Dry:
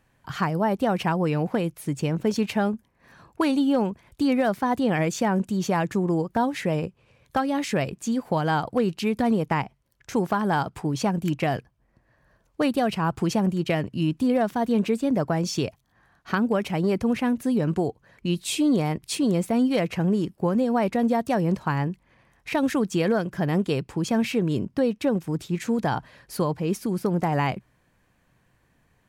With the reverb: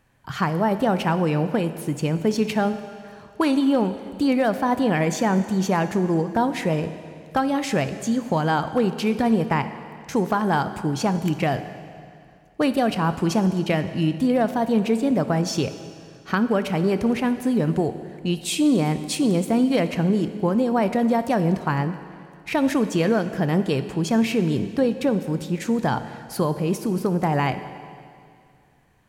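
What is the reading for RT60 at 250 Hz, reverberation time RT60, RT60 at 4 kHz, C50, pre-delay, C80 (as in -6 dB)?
2.3 s, 2.3 s, 2.2 s, 11.0 dB, 19 ms, 12.0 dB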